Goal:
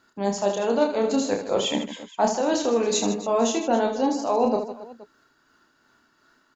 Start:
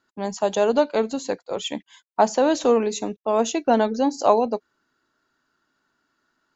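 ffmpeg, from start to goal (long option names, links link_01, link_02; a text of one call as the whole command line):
ffmpeg -i in.wav -af "areverse,acompressor=threshold=-28dB:ratio=6,areverse,tremolo=f=2.7:d=0.35,aecho=1:1:30|78|154.8|277.7|474.3:0.631|0.398|0.251|0.158|0.1,volume=8.5dB" out.wav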